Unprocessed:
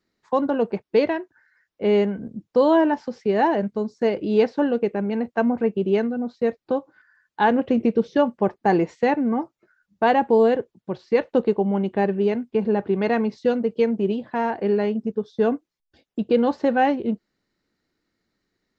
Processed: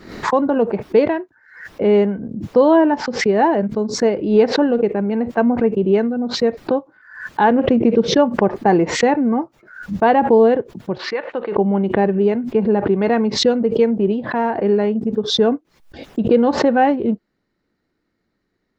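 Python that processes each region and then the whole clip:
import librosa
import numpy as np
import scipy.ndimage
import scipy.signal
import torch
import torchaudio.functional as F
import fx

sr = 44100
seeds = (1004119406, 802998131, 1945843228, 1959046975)

y = fx.chain(x, sr, fx.bandpass_q(hz=1800.0, q=0.8),
    fx.air_absorb(metres=55.0), at=(10.98, 11.56))
y = fx.high_shelf(y, sr, hz=3100.0, db=-11.5)
y = fx.pre_swell(y, sr, db_per_s=93.0)
y = y * librosa.db_to_amplitude(5.0)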